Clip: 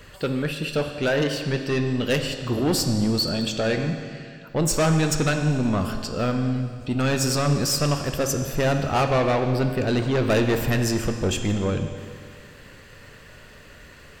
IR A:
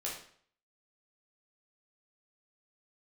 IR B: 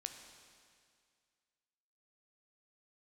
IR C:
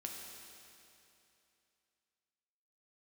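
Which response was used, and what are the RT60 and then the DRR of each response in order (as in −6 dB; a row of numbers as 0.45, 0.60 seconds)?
B; 0.55, 2.1, 2.8 seconds; −5.5, 5.5, −0.5 decibels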